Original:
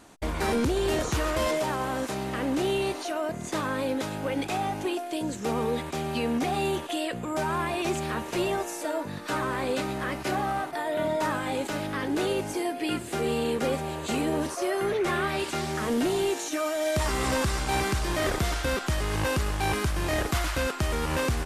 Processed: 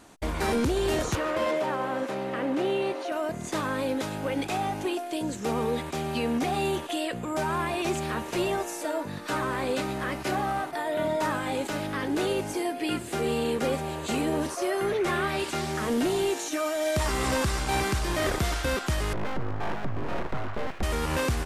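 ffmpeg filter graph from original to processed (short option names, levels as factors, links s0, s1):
-filter_complex "[0:a]asettb=1/sr,asplit=3[s0][s1][s2];[s0]atrim=end=1.154[s3];[s1]atrim=start=1.15:end=3.12,asetpts=PTS-STARTPTS,afade=t=in:d=0.004:c=qsin,afade=t=out:st=1.966:d=0.004:c=qsin,bass=f=250:g=-1,treble=f=4000:g=-12,aeval=exprs='val(0)+0.0178*sin(2*PI*540*n/s)':c=same,highpass=160[s4];[s2]atrim=start=3.116[s5];[s3][s4]acrossfade=d=0.004:c1=hsin:c2=qsin[s6];[s6][s5]acrossfade=d=0.004:c1=qsin:c2=hsin,asettb=1/sr,asplit=3[s7][s8][s9];[s7]atrim=end=19.134[s10];[s8]atrim=start=19.13:end=20.83,asetpts=PTS-STARTPTS,afade=t=in:d=0.004:c=qsin,afade=t=out:st=1.696:d=0.004:c=qsin,lowpass=1100,aeval=exprs='abs(val(0))':c=same[s11];[s9]atrim=start=20.826[s12];[s10][s11]acrossfade=d=0.004:c1=hsin:c2=qsin[s13];[s13][s12]acrossfade=d=0.004:c1=qsin:c2=hsin"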